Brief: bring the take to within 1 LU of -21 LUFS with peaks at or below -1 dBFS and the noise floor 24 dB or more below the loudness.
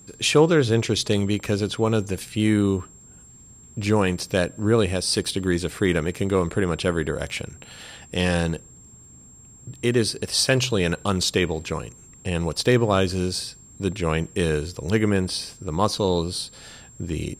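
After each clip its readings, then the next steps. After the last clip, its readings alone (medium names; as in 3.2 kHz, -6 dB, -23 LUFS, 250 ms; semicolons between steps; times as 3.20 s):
steady tone 7.5 kHz; tone level -47 dBFS; loudness -23.0 LUFS; peak level -5.0 dBFS; loudness target -21.0 LUFS
-> band-stop 7.5 kHz, Q 30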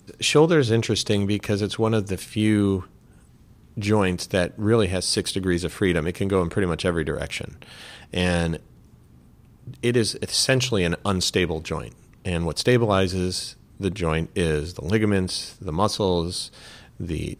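steady tone not found; loudness -23.0 LUFS; peak level -5.0 dBFS; loudness target -21.0 LUFS
-> trim +2 dB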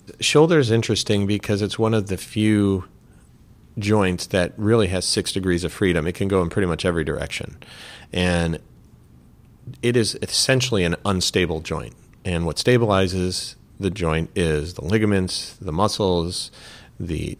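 loudness -21.0 LUFS; peak level -3.0 dBFS; noise floor -51 dBFS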